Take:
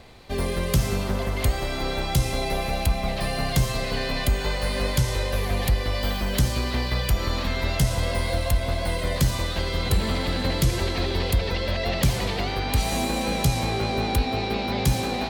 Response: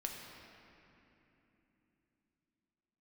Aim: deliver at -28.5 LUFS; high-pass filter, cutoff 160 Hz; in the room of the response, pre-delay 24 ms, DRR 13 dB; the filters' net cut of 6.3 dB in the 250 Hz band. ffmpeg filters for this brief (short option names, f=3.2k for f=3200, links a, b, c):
-filter_complex "[0:a]highpass=160,equalizer=f=250:t=o:g=-7,asplit=2[a][b];[1:a]atrim=start_sample=2205,adelay=24[c];[b][c]afir=irnorm=-1:irlink=0,volume=-13dB[d];[a][d]amix=inputs=2:normalize=0,volume=-0.5dB"